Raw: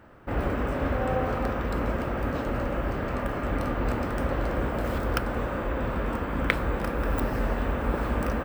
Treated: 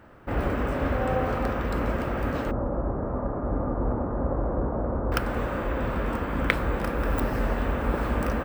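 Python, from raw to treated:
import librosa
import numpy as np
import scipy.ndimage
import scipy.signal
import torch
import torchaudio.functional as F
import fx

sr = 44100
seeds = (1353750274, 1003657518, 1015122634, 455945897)

y = fx.lowpass(x, sr, hz=1100.0, slope=24, at=(2.51, 5.12))
y = y * 10.0 ** (1.0 / 20.0)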